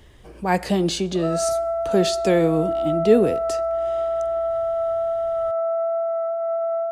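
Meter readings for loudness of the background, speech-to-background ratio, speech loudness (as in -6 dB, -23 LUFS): -24.0 LUFS, 2.0 dB, -22.0 LUFS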